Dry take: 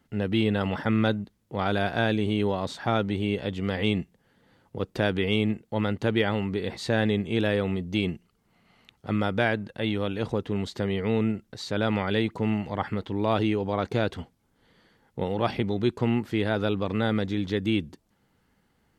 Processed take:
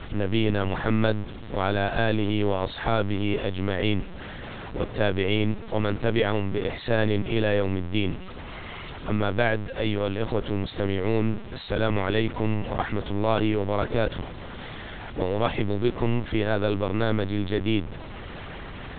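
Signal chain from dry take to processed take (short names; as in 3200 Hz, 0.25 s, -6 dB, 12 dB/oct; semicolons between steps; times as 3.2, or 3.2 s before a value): zero-crossing step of -31 dBFS; dynamic EQ 540 Hz, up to +3 dB, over -44 dBFS, Q 6.3; LPC vocoder at 8 kHz pitch kept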